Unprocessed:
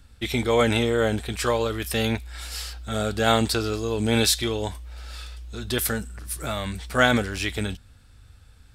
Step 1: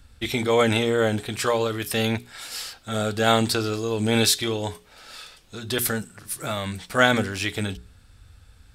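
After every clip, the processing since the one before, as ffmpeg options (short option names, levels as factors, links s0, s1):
-af "bandreject=f=60:t=h:w=6,bandreject=f=120:t=h:w=6,bandreject=f=180:t=h:w=6,bandreject=f=240:t=h:w=6,bandreject=f=300:t=h:w=6,bandreject=f=360:t=h:w=6,bandreject=f=420:t=h:w=6,volume=1.12"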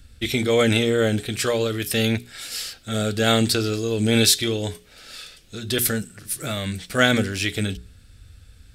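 -af "equalizer=f=940:w=1.6:g=-12.5,volume=1.5"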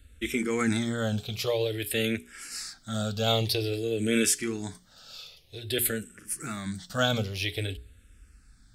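-filter_complex "[0:a]asplit=2[s0][s1];[s1]afreqshift=-0.51[s2];[s0][s2]amix=inputs=2:normalize=1,volume=0.631"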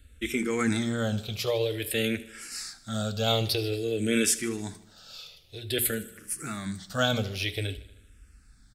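-af "aecho=1:1:77|154|231|308|385:0.126|0.0743|0.0438|0.0259|0.0153"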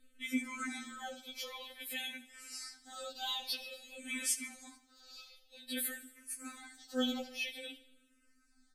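-af "afftfilt=real='re*3.46*eq(mod(b,12),0)':imag='im*3.46*eq(mod(b,12),0)':win_size=2048:overlap=0.75,volume=0.473"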